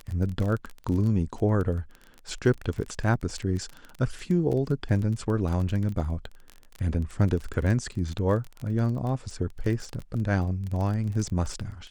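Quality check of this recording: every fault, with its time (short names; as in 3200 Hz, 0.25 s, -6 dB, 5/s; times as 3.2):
crackle 22/s -30 dBFS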